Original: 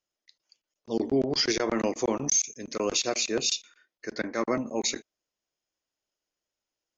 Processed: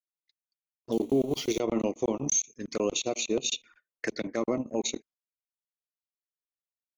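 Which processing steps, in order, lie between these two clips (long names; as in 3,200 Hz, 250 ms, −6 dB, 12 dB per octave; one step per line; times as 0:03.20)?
0:00.92–0:01.60: spike at every zero crossing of −31 dBFS
noise gate −54 dBFS, range −24 dB
high-shelf EQ 6,000 Hz −7.5 dB
transient designer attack +3 dB, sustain −11 dB
brickwall limiter −19 dBFS, peak gain reduction 5 dB
flanger swept by the level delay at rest 2.9 ms, full sweep at −30 dBFS
0:03.53–0:04.27: multiband upward and downward compressor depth 70%
level +2.5 dB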